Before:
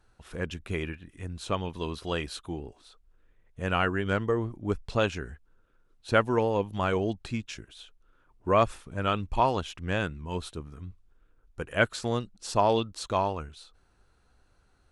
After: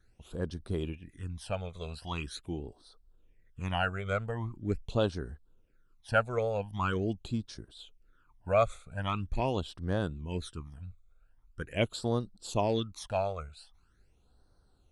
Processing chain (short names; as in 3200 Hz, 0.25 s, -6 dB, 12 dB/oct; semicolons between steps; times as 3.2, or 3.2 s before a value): phaser stages 12, 0.43 Hz, lowest notch 290–2500 Hz; gain -1.5 dB